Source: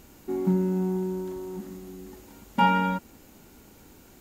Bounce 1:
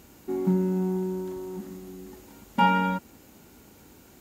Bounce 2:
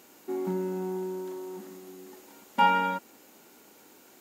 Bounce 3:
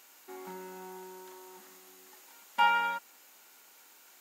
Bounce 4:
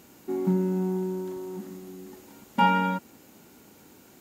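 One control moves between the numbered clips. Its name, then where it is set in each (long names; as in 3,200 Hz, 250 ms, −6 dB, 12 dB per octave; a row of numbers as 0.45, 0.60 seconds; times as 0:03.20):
high-pass filter, corner frequency: 50, 340, 1,000, 130 Hertz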